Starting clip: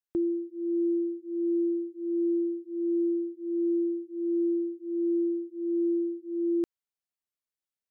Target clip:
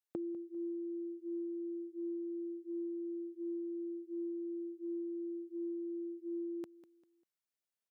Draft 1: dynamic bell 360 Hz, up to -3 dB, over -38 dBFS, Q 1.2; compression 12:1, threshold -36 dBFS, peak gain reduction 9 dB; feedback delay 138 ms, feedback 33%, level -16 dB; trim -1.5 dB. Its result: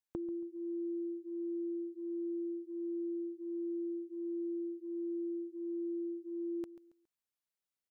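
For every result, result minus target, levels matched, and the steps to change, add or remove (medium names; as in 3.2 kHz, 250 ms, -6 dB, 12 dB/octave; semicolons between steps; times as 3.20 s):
echo 60 ms early; 125 Hz band +3.5 dB
change: feedback delay 198 ms, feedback 33%, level -16 dB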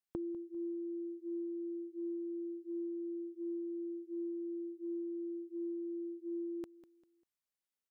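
125 Hz band +5.0 dB
add after dynamic bell: high-pass 150 Hz 12 dB/octave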